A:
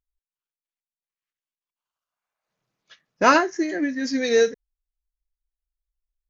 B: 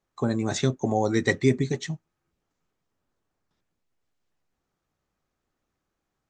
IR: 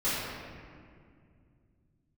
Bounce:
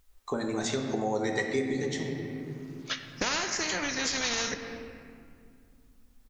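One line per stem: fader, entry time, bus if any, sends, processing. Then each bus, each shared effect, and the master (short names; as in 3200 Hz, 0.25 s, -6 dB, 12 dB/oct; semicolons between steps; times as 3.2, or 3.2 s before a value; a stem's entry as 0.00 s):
+2.5 dB, 0.00 s, send -20 dB, limiter -13.5 dBFS, peak gain reduction 10 dB; spectral compressor 4:1
+1.5 dB, 0.10 s, send -11.5 dB, bell 110 Hz -11 dB 2.2 oct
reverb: on, RT60 2.2 s, pre-delay 3 ms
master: compressor 2.5:1, threshold -30 dBFS, peak gain reduction 10.5 dB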